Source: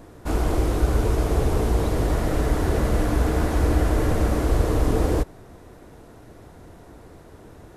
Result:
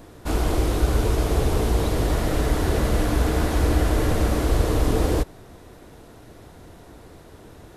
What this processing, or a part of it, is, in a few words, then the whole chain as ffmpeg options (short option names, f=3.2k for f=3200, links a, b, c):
presence and air boost: -af "equalizer=f=3.6k:t=o:w=1.3:g=5,highshelf=f=9.5k:g=5.5"